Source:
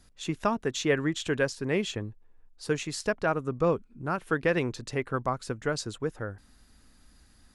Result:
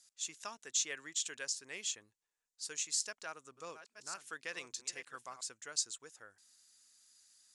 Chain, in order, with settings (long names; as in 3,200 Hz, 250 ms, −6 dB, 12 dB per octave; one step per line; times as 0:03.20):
0:02.94–0:05.41: delay that plays each chunk backwards 600 ms, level −11 dB
resonant band-pass 7,100 Hz, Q 2.1
level +6 dB